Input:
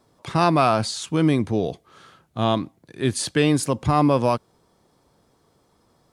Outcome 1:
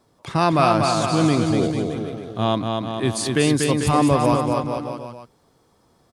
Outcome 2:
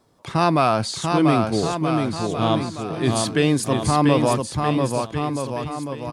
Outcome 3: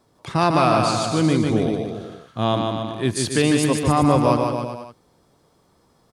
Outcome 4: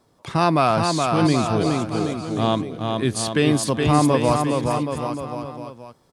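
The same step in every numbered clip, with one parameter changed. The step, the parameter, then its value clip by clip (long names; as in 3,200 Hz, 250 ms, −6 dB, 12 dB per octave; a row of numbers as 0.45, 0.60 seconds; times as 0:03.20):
bouncing-ball delay, first gap: 240, 690, 150, 420 milliseconds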